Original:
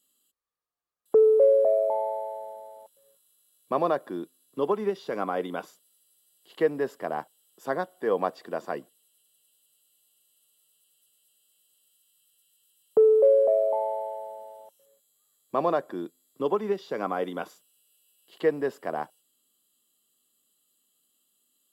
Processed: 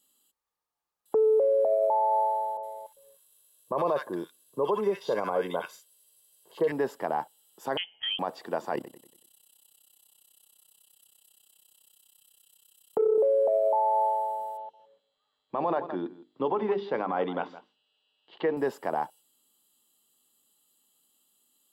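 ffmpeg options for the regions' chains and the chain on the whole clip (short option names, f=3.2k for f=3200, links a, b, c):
-filter_complex "[0:a]asettb=1/sr,asplit=3[a][b][c];[a]atrim=end=2.574[d];[b]atrim=start=2.57:end=6.72,asetpts=PTS-STARTPTS,afade=t=in:d=0.004:c=qsin,afade=t=out:st=4.146:d=0.004:c=qsin,aecho=1:1:1.9:0.51,atrim=end_sample=183015,acrossover=split=1400[e][f];[f]adelay=60[g];[e][g]amix=inputs=2:normalize=0,atrim=end_sample=183015[h];[c]atrim=start=6.716[i];[d][h]acrossfade=d=0.004:c1=hsin:c2=qsin[j];[j][i]acrossfade=d=0.004:c1=qsin:c2=hsin,asettb=1/sr,asplit=3[k][l][m];[k]atrim=end=7.774[n];[l]atrim=start=7.77:end=8.19,asetpts=PTS-STARTPTS,afade=t=in:d=0.004:c=qsin,afade=t=out:st=0.416:d=0.004:c=qsin,highpass=290,lowpass=f=3.1k:t=q:w=0.5098,lowpass=f=3.1k:t=q:w=0.6013,lowpass=f=3.1k:t=q:w=0.9,lowpass=f=3.1k:t=q:w=2.563,afreqshift=-3600,acompressor=threshold=-31dB:ratio=4:attack=3.2:release=140:knee=1:detection=peak[o];[m]atrim=start=8.186[p];[n][o]acrossfade=d=0.004:c1=hsin:c2=qsin[q];[q][p]acrossfade=d=0.004:c1=qsin:c2=hsin,asettb=1/sr,asplit=3[r][s][t];[r]atrim=end=8.754[u];[s]atrim=start=8.75:end=13.18,asetpts=PTS-STARTPTS,afade=t=in:d=0.004:c=qsin,afade=t=out:st=4.426:d=0.004:c=qsin,acontrast=79,tremolo=f=32:d=0.919,aecho=1:1:94|188|282|376|470:0.224|0.103|0.0474|0.0218|0.01,atrim=end_sample=195363[v];[t]atrim=start=13.176[w];[u][v]acrossfade=d=0.004:c1=hsin:c2=qsin[x];[x][w]acrossfade=d=0.004:c1=qsin:c2=hsin,asettb=1/sr,asplit=3[y][z][aa];[y]atrim=end=14.574[ab];[z]atrim=start=14.57:end=18.57,asetpts=PTS-STARTPTS,afade=t=in:d=0.004:c=qsin,afade=t=out:st=3.996:d=0.004:c=qsin,lowpass=f=3.8k:w=0.5412,lowpass=f=3.8k:w=1.3066,bandreject=f=50:t=h:w=6,bandreject=f=100:t=h:w=6,bandreject=f=150:t=h:w=6,bandreject=f=200:t=h:w=6,bandreject=f=250:t=h:w=6,bandreject=f=300:t=h:w=6,bandreject=f=350:t=h:w=6,bandreject=f=400:t=h:w=6,bandreject=f=450:t=h:w=6,aecho=1:1:164:0.126,atrim=end_sample=176400[ac];[aa]atrim=start=18.566[ad];[ab][ac]acrossfade=d=0.004:c1=hsin:c2=qsin[ae];[ae][ad]acrossfade=d=0.004:c1=qsin:c2=hsin,equalizer=f=870:t=o:w=0.26:g=10.5,alimiter=limit=-20dB:level=0:latency=1:release=31,volume=2dB"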